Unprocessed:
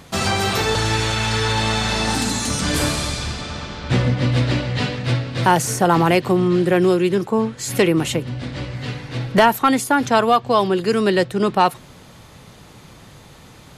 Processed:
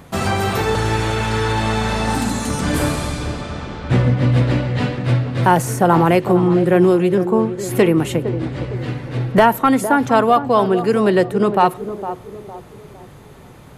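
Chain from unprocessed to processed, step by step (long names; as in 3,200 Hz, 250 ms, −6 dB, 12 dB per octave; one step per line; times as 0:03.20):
parametric band 4,900 Hz −10 dB 2 octaves
feedback echo with a band-pass in the loop 458 ms, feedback 44%, band-pass 430 Hz, level −9.5 dB
on a send at −22.5 dB: convolution reverb RT60 0.95 s, pre-delay 7 ms
on the sum: level +2.5 dB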